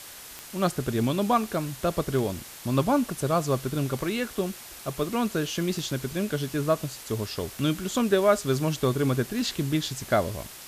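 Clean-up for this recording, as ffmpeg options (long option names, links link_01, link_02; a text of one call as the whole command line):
ffmpeg -i in.wav -af "adeclick=threshold=4,afwtdn=0.0079" out.wav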